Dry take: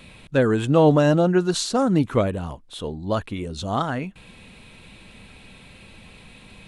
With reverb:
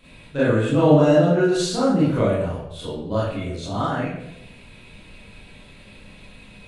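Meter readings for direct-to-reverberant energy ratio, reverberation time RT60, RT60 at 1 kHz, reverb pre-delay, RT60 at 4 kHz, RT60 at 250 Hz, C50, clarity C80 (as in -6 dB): -11.0 dB, 0.90 s, 0.70 s, 28 ms, 0.60 s, 0.85 s, -1.5 dB, 3.5 dB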